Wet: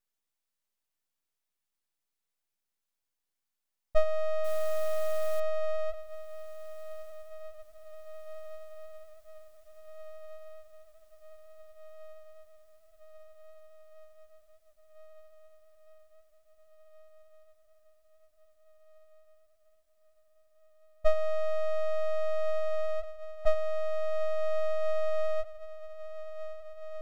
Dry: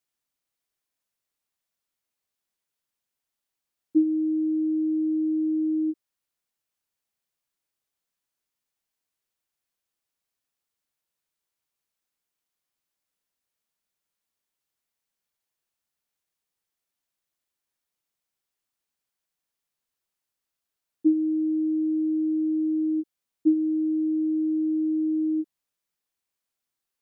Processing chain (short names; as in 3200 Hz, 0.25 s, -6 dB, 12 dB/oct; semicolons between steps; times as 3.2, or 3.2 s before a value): 4.44–5.4 modulation noise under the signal 26 dB; diffused feedback echo 1.813 s, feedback 73%, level -14 dB; full-wave rectifier